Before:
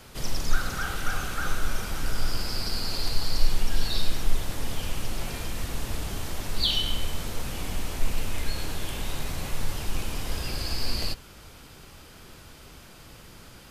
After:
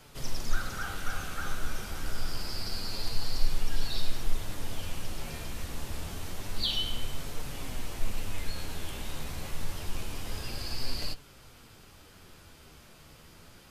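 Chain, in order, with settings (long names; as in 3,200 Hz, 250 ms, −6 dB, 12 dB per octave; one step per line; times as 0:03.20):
flanger 0.27 Hz, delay 6.6 ms, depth 7.2 ms, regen +53%
level −1.5 dB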